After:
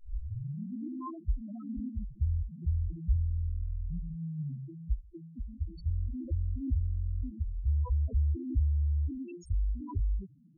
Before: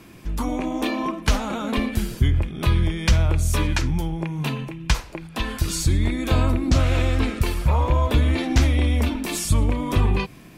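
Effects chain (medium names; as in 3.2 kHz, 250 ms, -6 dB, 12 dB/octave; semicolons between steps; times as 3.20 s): tape start-up on the opening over 0.92 s; loudest bins only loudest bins 2; trim -8 dB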